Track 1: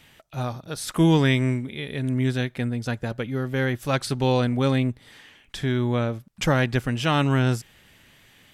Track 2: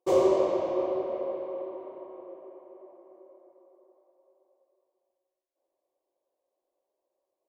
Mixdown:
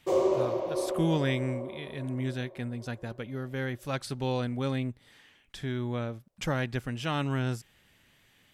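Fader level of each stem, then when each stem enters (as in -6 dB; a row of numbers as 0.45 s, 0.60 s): -9.0 dB, -3.0 dB; 0.00 s, 0.00 s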